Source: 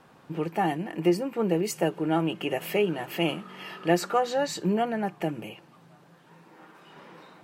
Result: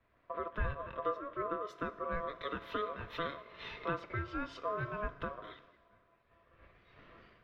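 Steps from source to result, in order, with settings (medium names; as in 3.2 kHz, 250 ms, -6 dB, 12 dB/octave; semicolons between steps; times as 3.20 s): compression 4:1, threshold -39 dBFS, peak gain reduction 19 dB; Schroeder reverb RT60 3.7 s, combs from 30 ms, DRR 12.5 dB; ring modulator 840 Hz; distance through air 290 m; three bands expanded up and down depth 100%; trim +5 dB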